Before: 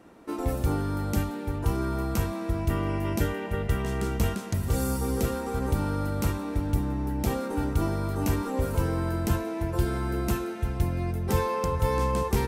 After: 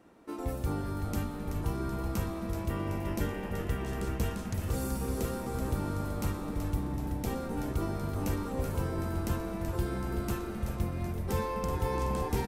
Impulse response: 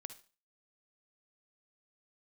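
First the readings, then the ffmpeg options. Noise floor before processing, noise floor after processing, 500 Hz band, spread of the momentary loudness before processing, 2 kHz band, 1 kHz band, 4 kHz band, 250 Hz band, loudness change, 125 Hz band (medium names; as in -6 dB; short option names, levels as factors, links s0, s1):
-35 dBFS, -38 dBFS, -5.5 dB, 3 LU, -6.0 dB, -5.5 dB, -5.5 dB, -5.0 dB, -5.5 dB, -5.5 dB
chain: -filter_complex "[0:a]asplit=9[s0][s1][s2][s3][s4][s5][s6][s7][s8];[s1]adelay=379,afreqshift=-140,volume=0.422[s9];[s2]adelay=758,afreqshift=-280,volume=0.254[s10];[s3]adelay=1137,afreqshift=-420,volume=0.151[s11];[s4]adelay=1516,afreqshift=-560,volume=0.0912[s12];[s5]adelay=1895,afreqshift=-700,volume=0.055[s13];[s6]adelay=2274,afreqshift=-840,volume=0.0327[s14];[s7]adelay=2653,afreqshift=-980,volume=0.0197[s15];[s8]adelay=3032,afreqshift=-1120,volume=0.0117[s16];[s0][s9][s10][s11][s12][s13][s14][s15][s16]amix=inputs=9:normalize=0,volume=0.473"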